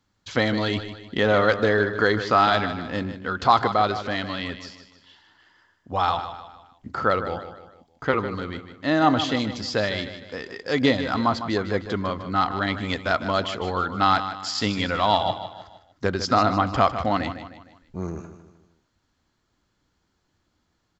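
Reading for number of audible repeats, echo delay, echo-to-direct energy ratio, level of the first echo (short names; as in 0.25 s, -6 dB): 4, 0.153 s, -10.0 dB, -11.0 dB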